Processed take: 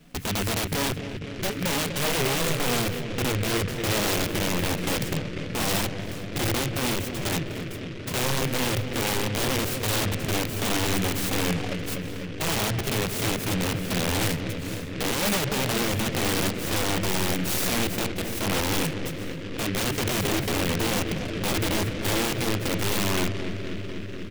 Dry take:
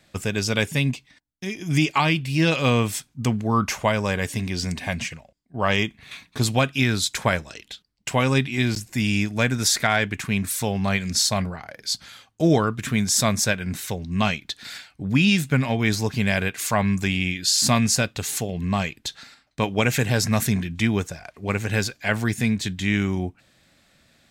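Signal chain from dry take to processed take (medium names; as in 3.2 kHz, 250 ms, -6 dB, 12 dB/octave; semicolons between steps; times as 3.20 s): tilt shelf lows +9.5 dB, about 820 Hz; compression 3:1, threshold -27 dBFS, peak gain reduction 15 dB; touch-sensitive flanger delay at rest 4.6 ms, full sweep at -22.5 dBFS; comb 6.9 ms, depth 77%; peak limiter -19.5 dBFS, peak gain reduction 9.5 dB; integer overflow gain 25 dB; treble shelf 7.6 kHz +6 dB; bucket-brigade echo 246 ms, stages 1024, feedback 83%, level -7 dB; harmonic-percussive split harmonic +6 dB; delay time shaken by noise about 2.1 kHz, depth 0.19 ms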